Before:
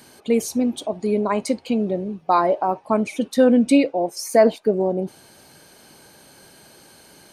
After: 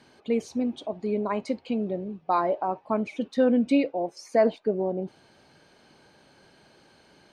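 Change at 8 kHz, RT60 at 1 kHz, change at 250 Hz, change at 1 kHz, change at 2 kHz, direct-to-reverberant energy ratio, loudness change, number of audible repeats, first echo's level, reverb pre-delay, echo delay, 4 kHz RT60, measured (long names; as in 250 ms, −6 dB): below −15 dB, no reverb audible, −6.5 dB, −6.5 dB, −7.0 dB, no reverb audible, −6.5 dB, no echo audible, no echo audible, no reverb audible, no echo audible, no reverb audible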